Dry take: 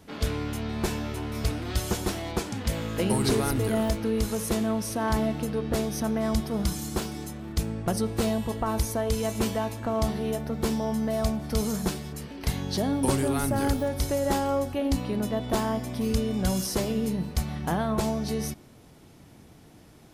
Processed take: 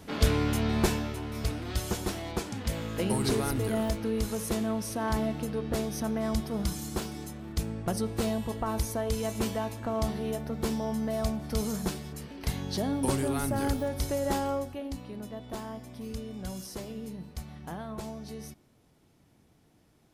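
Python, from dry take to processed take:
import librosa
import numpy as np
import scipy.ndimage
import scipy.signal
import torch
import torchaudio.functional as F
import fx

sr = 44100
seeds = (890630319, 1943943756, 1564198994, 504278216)

y = fx.gain(x, sr, db=fx.line((0.78, 4.0), (1.18, -3.5), (14.47, -3.5), (14.93, -12.0)))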